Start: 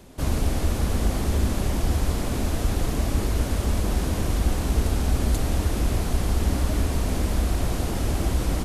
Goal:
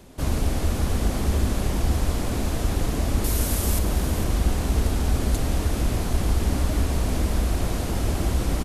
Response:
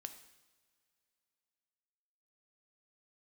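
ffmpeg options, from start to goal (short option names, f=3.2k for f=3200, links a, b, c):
-filter_complex "[0:a]asettb=1/sr,asplit=3[a][b][c];[a]atrim=end=3.244[d];[b]atrim=start=3.24:end=3.79,asetpts=PTS-STARTPTS,afade=t=in:d=0.004:c=qsin,afade=t=out:st=0.546:d=0.004:c=qsin,aemphasis=mode=production:type=50fm[e];[c]atrim=start=3.786[f];[d][e]acrossfade=d=0.004:c1=hsin:c2=qsin[g];[g][f]acrossfade=d=0.004:c1=qsin:c2=hsin,aecho=1:1:452:0.282"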